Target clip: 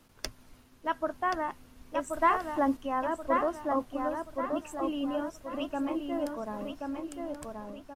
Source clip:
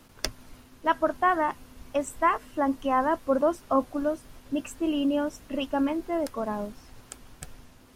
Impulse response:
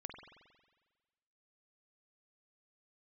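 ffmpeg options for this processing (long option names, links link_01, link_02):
-filter_complex "[0:a]asettb=1/sr,asplit=3[link_01][link_02][link_03];[link_01]atrim=end=2.134[link_04];[link_02]atrim=start=2.13:end=2.77,asetpts=PTS-STARTPTS,afade=type=in:duration=0.004:curve=qsin,afade=type=out:start_time=0.636:duration=0.004:curve=qsin,acontrast=46[link_05];[link_03]atrim=start=2.766[link_06];[link_04][link_05]acrossfade=duration=0.004:curve1=hsin:curve2=qsin[link_07];[link_07][link_06]acrossfade=duration=0.004:curve1=qsin:curve2=hsin,asplit=2[link_08][link_09];[link_09]adelay=1079,lowpass=frequency=3300:poles=1,volume=-4dB,asplit=2[link_10][link_11];[link_11]adelay=1079,lowpass=frequency=3300:poles=1,volume=0.43,asplit=2[link_12][link_13];[link_13]adelay=1079,lowpass=frequency=3300:poles=1,volume=0.43,asplit=2[link_14][link_15];[link_15]adelay=1079,lowpass=frequency=3300:poles=1,volume=0.43,asplit=2[link_16][link_17];[link_17]adelay=1079,lowpass=frequency=3300:poles=1,volume=0.43[link_18];[link_08][link_10][link_12][link_14][link_16][link_18]amix=inputs=6:normalize=0,volume=-7dB"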